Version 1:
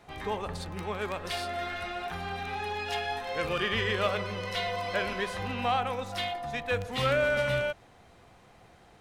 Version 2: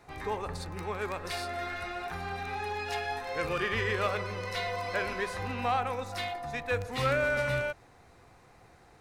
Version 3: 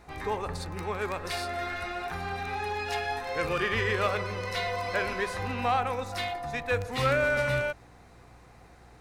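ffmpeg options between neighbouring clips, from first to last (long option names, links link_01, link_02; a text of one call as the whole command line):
ffmpeg -i in.wav -af "equalizer=frequency=200:width_type=o:width=0.33:gain=-6,equalizer=frequency=630:width_type=o:width=0.33:gain=-4,equalizer=frequency=3150:width_type=o:width=0.33:gain=-9" out.wav
ffmpeg -i in.wav -af "aeval=exprs='val(0)+0.00112*(sin(2*PI*60*n/s)+sin(2*PI*2*60*n/s)/2+sin(2*PI*3*60*n/s)/3+sin(2*PI*4*60*n/s)/4+sin(2*PI*5*60*n/s)/5)':channel_layout=same,volume=2.5dB" out.wav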